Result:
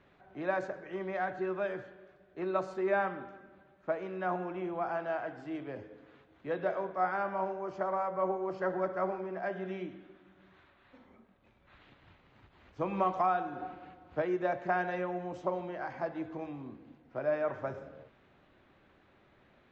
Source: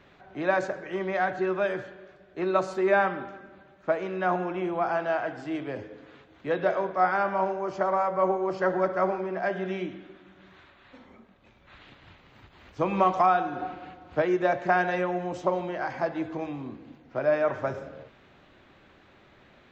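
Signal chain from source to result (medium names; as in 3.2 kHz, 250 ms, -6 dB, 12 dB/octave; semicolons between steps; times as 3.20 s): treble shelf 3.5 kHz -8 dB; trim -7 dB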